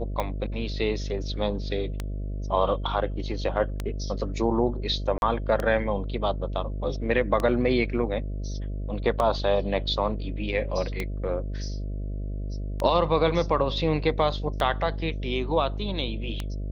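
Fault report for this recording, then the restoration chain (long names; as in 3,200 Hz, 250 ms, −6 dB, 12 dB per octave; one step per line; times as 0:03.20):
mains buzz 50 Hz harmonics 13 −31 dBFS
scratch tick 33 1/3 rpm −14 dBFS
0:05.18–0:05.22: drop-out 41 ms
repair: click removal
hum removal 50 Hz, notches 13
repair the gap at 0:05.18, 41 ms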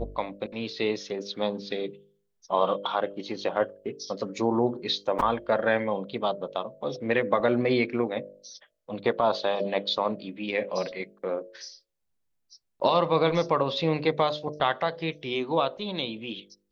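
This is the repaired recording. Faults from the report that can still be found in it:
none of them is left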